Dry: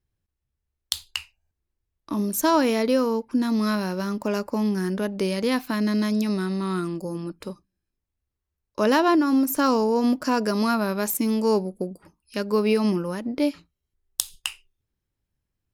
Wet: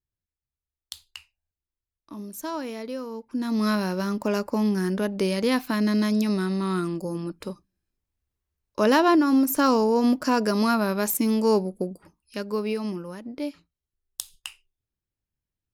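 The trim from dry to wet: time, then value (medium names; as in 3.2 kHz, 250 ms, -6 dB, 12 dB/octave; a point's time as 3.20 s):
3.09 s -12 dB
3.66 s +0.5 dB
11.87 s +0.5 dB
12.85 s -8 dB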